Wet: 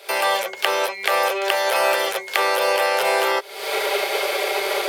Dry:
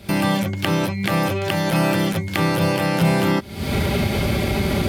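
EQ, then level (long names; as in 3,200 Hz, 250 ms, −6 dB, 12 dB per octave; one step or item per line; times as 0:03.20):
elliptic high-pass filter 420 Hz, stop band 40 dB
+4.5 dB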